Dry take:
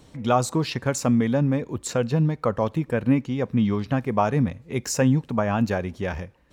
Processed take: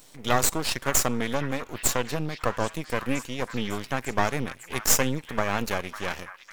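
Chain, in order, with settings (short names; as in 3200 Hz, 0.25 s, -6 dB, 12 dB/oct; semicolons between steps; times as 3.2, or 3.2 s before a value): RIAA curve recording; half-wave rectifier; delay with a stepping band-pass 0.551 s, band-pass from 1400 Hz, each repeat 0.7 oct, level -9 dB; gain +2 dB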